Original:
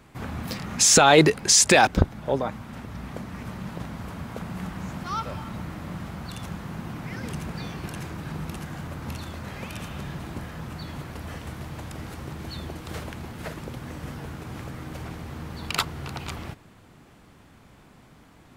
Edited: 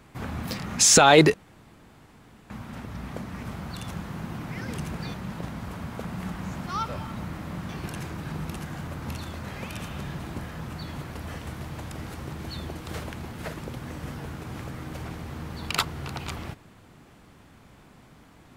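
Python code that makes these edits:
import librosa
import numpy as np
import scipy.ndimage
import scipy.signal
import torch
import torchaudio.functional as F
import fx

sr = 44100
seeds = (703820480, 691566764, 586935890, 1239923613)

y = fx.edit(x, sr, fx.room_tone_fill(start_s=1.34, length_s=1.16),
    fx.move(start_s=6.06, length_s=1.63, to_s=3.51), tone=tone)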